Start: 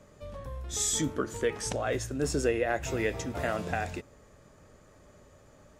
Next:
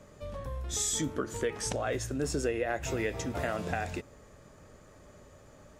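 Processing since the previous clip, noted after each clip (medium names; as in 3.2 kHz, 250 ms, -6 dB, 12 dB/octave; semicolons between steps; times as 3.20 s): compression 2:1, threshold -33 dBFS, peak gain reduction 6.5 dB; trim +2 dB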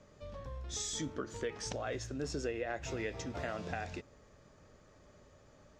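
resonant high shelf 7.9 kHz -13 dB, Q 1.5; trim -6.5 dB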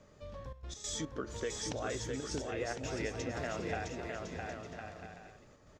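trance gate "xxxxx.x.xx.xxxxx" 143 bpm -12 dB; on a send: bouncing-ball echo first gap 660 ms, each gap 0.6×, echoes 5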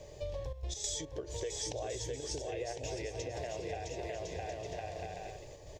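compression 6:1, threshold -47 dBFS, peak gain reduction 14.5 dB; static phaser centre 550 Hz, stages 4; trim +12.5 dB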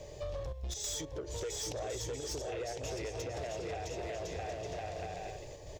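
saturation -36 dBFS, distortion -14 dB; trim +3 dB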